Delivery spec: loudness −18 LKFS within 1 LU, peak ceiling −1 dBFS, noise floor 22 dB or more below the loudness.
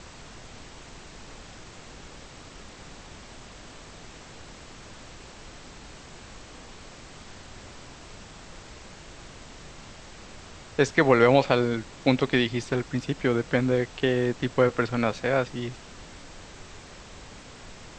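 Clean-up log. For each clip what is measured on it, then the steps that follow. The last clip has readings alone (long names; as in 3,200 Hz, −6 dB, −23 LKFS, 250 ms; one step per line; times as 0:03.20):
background noise floor −46 dBFS; target noise floor −47 dBFS; integrated loudness −24.5 LKFS; sample peak −4.5 dBFS; target loudness −18.0 LKFS
→ noise reduction from a noise print 6 dB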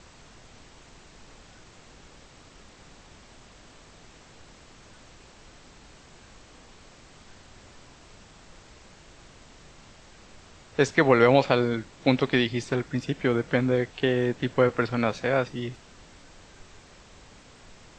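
background noise floor −52 dBFS; integrated loudness −24.5 LKFS; sample peak −4.5 dBFS; target loudness −18.0 LKFS
→ level +6.5 dB
brickwall limiter −1 dBFS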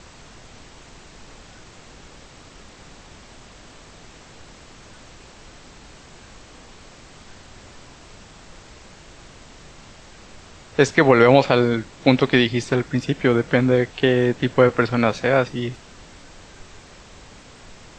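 integrated loudness −18.5 LKFS; sample peak −1.0 dBFS; background noise floor −46 dBFS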